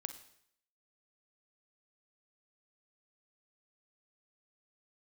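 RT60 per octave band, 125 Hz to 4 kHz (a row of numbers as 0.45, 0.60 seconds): 0.65, 0.65, 0.70, 0.65, 0.65, 0.65 seconds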